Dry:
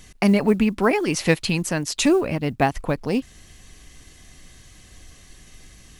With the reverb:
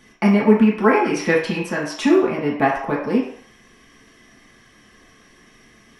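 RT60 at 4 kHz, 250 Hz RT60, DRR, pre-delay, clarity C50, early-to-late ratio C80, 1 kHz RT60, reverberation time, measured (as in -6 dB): 0.60 s, 0.45 s, -5.0 dB, 3 ms, 4.5 dB, 8.5 dB, 0.60 s, 0.55 s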